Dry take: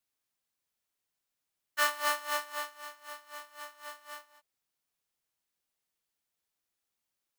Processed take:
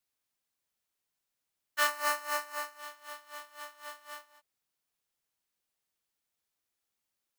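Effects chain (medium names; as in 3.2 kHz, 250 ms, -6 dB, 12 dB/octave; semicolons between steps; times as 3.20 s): 1.87–2.79 s: peaking EQ 3.4 kHz -12.5 dB 0.23 oct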